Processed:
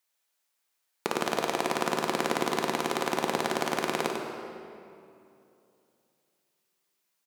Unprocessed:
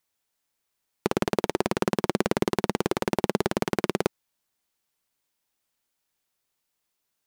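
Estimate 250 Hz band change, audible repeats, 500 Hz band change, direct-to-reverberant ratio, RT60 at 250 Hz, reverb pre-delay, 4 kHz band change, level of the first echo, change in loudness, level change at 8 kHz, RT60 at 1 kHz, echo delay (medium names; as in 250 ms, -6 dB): -5.5 dB, 1, -3.5 dB, 0.5 dB, 2.9 s, 8 ms, +2.0 dB, -7.0 dB, -2.0 dB, +2.0 dB, 2.6 s, 96 ms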